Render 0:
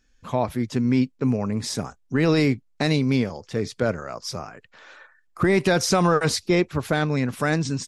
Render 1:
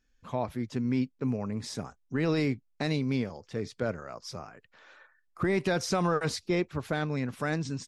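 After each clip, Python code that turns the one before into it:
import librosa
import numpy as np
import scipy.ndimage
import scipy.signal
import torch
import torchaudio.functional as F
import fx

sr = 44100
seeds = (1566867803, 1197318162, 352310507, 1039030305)

y = fx.high_shelf(x, sr, hz=7500.0, db=-6.5)
y = y * librosa.db_to_amplitude(-8.0)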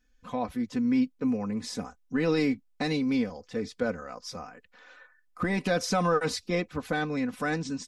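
y = x + 0.72 * np.pad(x, (int(4.0 * sr / 1000.0), 0))[:len(x)]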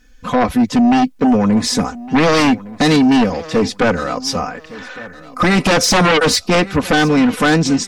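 y = fx.fold_sine(x, sr, drive_db=10, ceiling_db=-14.5)
y = fx.echo_feedback(y, sr, ms=1161, feedback_pct=29, wet_db=-19)
y = y * librosa.db_to_amplitude(6.0)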